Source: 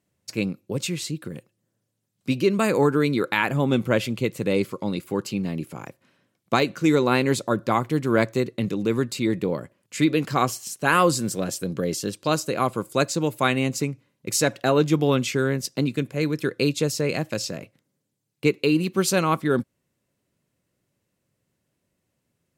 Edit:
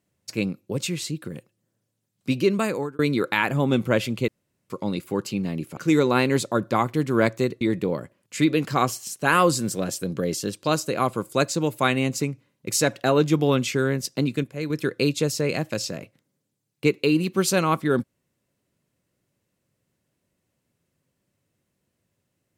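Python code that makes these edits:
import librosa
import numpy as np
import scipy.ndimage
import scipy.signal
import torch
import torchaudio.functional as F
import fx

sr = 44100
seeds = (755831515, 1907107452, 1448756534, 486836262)

y = fx.edit(x, sr, fx.fade_out_span(start_s=2.51, length_s=0.48),
    fx.room_tone_fill(start_s=4.28, length_s=0.42),
    fx.cut(start_s=5.77, length_s=0.96),
    fx.cut(start_s=8.57, length_s=0.64),
    fx.clip_gain(start_s=16.04, length_s=0.26, db=-5.5), tone=tone)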